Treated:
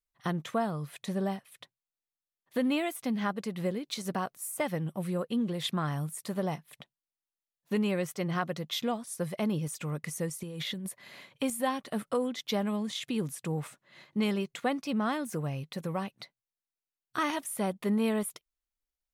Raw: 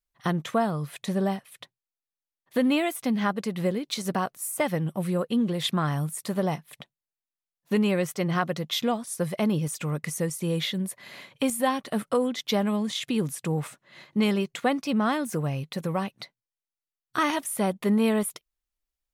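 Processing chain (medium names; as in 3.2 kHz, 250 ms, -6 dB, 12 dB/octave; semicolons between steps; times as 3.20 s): 10.43–10.89 s: compressor with a negative ratio -32 dBFS, ratio -1; trim -5.5 dB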